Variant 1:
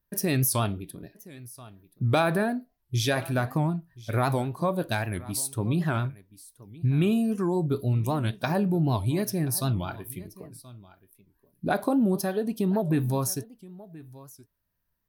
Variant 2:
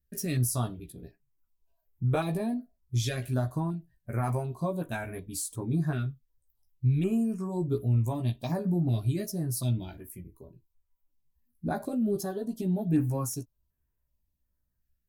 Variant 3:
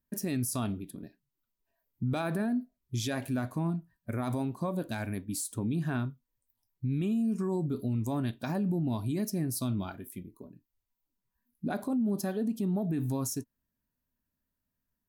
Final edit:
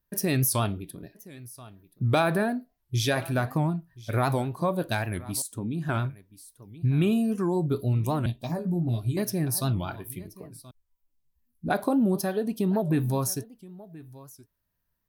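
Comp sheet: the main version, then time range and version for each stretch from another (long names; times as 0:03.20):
1
0:05.42–0:05.89: punch in from 3
0:08.26–0:09.17: punch in from 2
0:10.71–0:11.70: punch in from 2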